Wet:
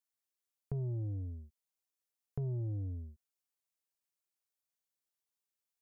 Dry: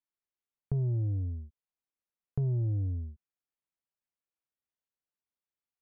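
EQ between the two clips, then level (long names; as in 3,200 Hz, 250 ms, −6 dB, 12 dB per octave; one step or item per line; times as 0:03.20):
bass and treble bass −5 dB, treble +8 dB
−2.5 dB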